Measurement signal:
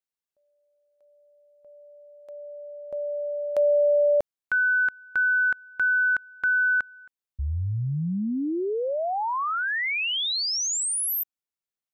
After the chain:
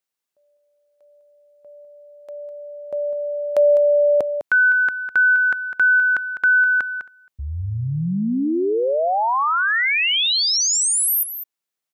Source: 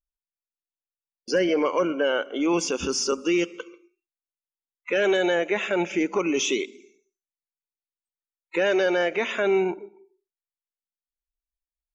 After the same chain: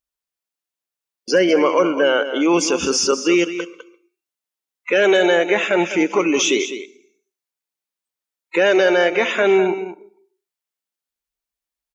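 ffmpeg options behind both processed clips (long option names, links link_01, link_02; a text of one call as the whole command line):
ffmpeg -i in.wav -filter_complex "[0:a]highpass=frequency=170:poles=1,asplit=2[link_01][link_02];[link_02]aecho=0:1:203:0.282[link_03];[link_01][link_03]amix=inputs=2:normalize=0,volume=7.5dB" out.wav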